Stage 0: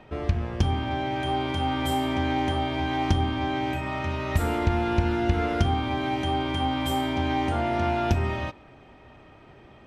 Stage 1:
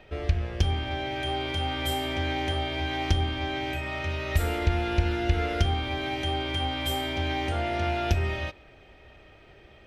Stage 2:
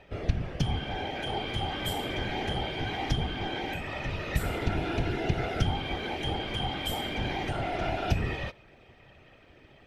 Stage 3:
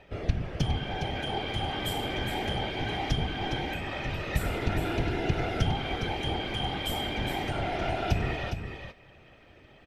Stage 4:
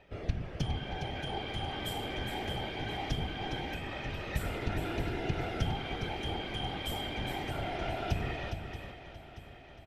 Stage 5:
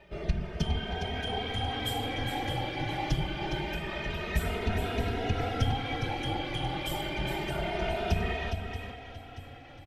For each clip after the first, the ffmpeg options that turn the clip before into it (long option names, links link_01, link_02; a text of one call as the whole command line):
ffmpeg -i in.wav -af "equalizer=frequency=125:width_type=o:width=1:gain=-8,equalizer=frequency=250:width_type=o:width=1:gain=-11,equalizer=frequency=1000:width_type=o:width=1:gain=-12,equalizer=frequency=8000:width_type=o:width=1:gain=-4,volume=4dB" out.wav
ffmpeg -i in.wav -af "afftfilt=real='hypot(re,im)*cos(2*PI*random(0))':imag='hypot(re,im)*sin(2*PI*random(1))':win_size=512:overlap=0.75,volume=3dB" out.wav
ffmpeg -i in.wav -af "aecho=1:1:411:0.422" out.wav
ffmpeg -i in.wav -af "aecho=1:1:630|1260|1890|2520|3150|3780:0.211|0.125|0.0736|0.0434|0.0256|0.0151,volume=-5.5dB" out.wav
ffmpeg -i in.wav -filter_complex "[0:a]asplit=2[link_01][link_02];[link_02]adelay=2.9,afreqshift=0.27[link_03];[link_01][link_03]amix=inputs=2:normalize=1,volume=7dB" out.wav